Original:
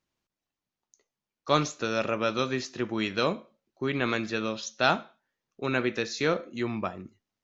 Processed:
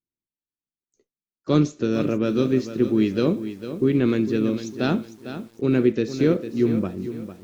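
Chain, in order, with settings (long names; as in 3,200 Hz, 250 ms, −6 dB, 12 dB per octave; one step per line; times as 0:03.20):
noise gate with hold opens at −49 dBFS
pitch-shifted copies added +3 semitones −17 dB
low shelf with overshoot 520 Hz +13.5 dB, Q 1.5
feedback echo at a low word length 452 ms, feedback 35%, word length 7 bits, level −11 dB
level −4.5 dB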